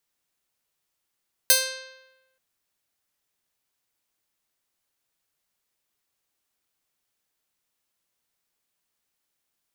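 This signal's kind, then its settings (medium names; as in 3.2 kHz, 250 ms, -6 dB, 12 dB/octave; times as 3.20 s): plucked string C5, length 0.88 s, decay 1.07 s, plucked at 0.46, bright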